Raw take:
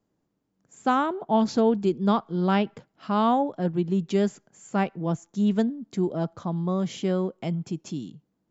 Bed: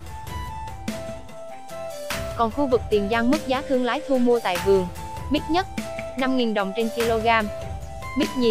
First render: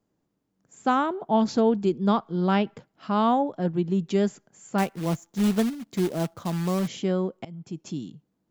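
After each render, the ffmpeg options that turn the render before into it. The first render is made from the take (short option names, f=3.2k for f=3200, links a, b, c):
-filter_complex "[0:a]asettb=1/sr,asplit=3[a][b][c];[a]atrim=end=4.784[d];[b]atrim=start=4.78:end=6.88,asetpts=PTS-STARTPTS,afade=t=in:d=0.004:c=qsin,afade=t=out:st=2.096:d=0.004:c=qsin,acrusher=bits=3:mode=log:mix=0:aa=0.000001[e];[c]atrim=start=6.876[f];[d][e]acrossfade=d=0.004:c1=hsin:c2=qsin[g];[g][f]acrossfade=d=0.004:c1=qsin:c2=hsin,asplit=2[h][i];[h]atrim=end=7.45,asetpts=PTS-STARTPTS,afade=t=out:st=7.446:d=0.004:c=hsin:silence=0.0841395[j];[i]atrim=start=7.45,asetpts=PTS-STARTPTS,afade=t=in:d=0.48:silence=0.0841395[k];[j][k]concat=n=2:v=0:a=1"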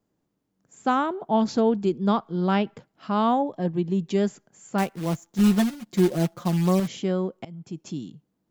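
-filter_complex "[0:a]asettb=1/sr,asplit=3[a][b][c];[a]atrim=end=3.424[d];[b]atrim=start=3.42:end=4.18,asetpts=PTS-STARTPTS,afade=t=in:d=0.004:c=qsin,afade=t=out:st=0.756:d=0.004:c=qsin,asuperstop=centerf=1400:order=4:qfactor=6[e];[c]atrim=start=4.176[f];[d][e]acrossfade=d=0.004:c1=hsin:c2=qsin[g];[g][f]acrossfade=d=0.004:c1=qsin:c2=hsin,asettb=1/sr,asplit=3[h][i][j];[h]atrim=end=5.384[k];[i]atrim=start=5.38:end=6.8,asetpts=PTS-STARTPTS,afade=t=in:d=0.004:c=qsin,afade=t=out:st=1.416:d=0.004:c=qsin,aecho=1:1:5.6:0.85,atrim=end_sample=62622[l];[j]atrim=start=6.796[m];[k][l]acrossfade=d=0.004:c1=hsin:c2=qsin[n];[n][m]acrossfade=d=0.004:c1=qsin:c2=hsin"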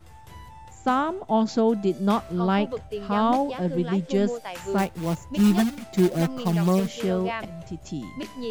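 -filter_complex "[1:a]volume=-12dB[a];[0:a][a]amix=inputs=2:normalize=0"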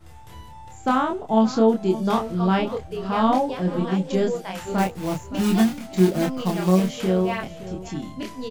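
-filter_complex "[0:a]asplit=2[a][b];[b]adelay=27,volume=-2.5dB[c];[a][c]amix=inputs=2:normalize=0,aecho=1:1:568:0.168"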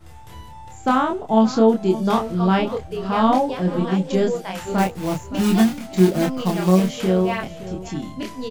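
-af "volume=2.5dB"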